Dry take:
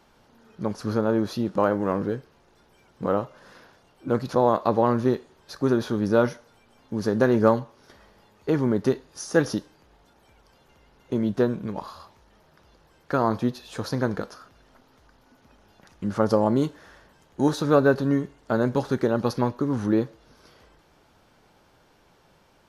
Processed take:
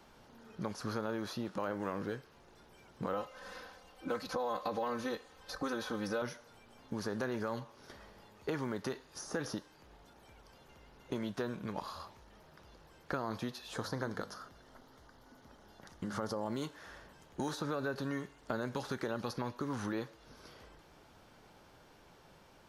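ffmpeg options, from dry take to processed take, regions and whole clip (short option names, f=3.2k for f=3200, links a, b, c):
-filter_complex "[0:a]asettb=1/sr,asplit=3[a][b][c];[a]atrim=end=3.134[d];[b]atrim=start=3.13:end=6.22,asetpts=PTS-STARTPTS,afade=t=in:d=0.004:c=qsin,afade=t=out:st=3.086:d=0.004:c=qsin,equalizer=f=250:w=2.6:g=-9.5,aecho=1:1:3.9:0.98,atrim=end_sample=136269[e];[c]atrim=start=6.216[f];[d][e]acrossfade=d=0.004:c1=hsin:c2=qsin[g];[g][f]acrossfade=d=0.004:c1=qsin:c2=hsin,asettb=1/sr,asplit=3[h][i][j];[h]atrim=end=13.744[k];[i]atrim=start=13.74:end=16.47,asetpts=PTS-STARTPTS,afade=t=in:d=0.004:c=qsin,afade=t=out:st=2.726:d=0.004:c=qsin,equalizer=f=2.5k:t=o:w=0.21:g=-10,bandreject=f=50:t=h:w=6,bandreject=f=100:t=h:w=6,bandreject=f=150:t=h:w=6,bandreject=f=200:t=h:w=6,bandreject=f=250:t=h:w=6[l];[j]atrim=start=16.466[m];[k][l]acrossfade=d=0.004:c1=hsin:c2=qsin[n];[n][m]acrossfade=d=0.004:c1=qsin:c2=hsin,alimiter=limit=-14.5dB:level=0:latency=1:release=59,acrossover=split=730|1700[o][p][q];[o]acompressor=threshold=-38dB:ratio=4[r];[p]acompressor=threshold=-42dB:ratio=4[s];[q]acompressor=threshold=-45dB:ratio=4[t];[r][s][t]amix=inputs=3:normalize=0,volume=-1dB"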